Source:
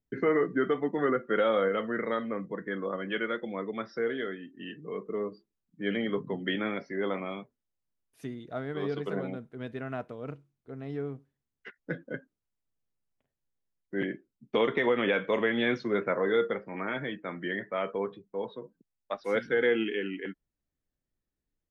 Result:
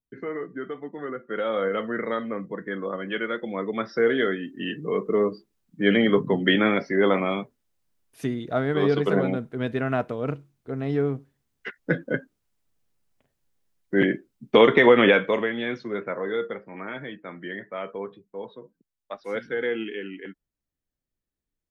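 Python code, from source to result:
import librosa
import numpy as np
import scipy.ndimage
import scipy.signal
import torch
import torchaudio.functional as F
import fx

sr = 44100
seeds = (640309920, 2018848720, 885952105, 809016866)

y = fx.gain(x, sr, db=fx.line((1.1, -6.5), (1.75, 3.0), (3.28, 3.0), (4.23, 11.0), (15.06, 11.0), (15.57, -1.5)))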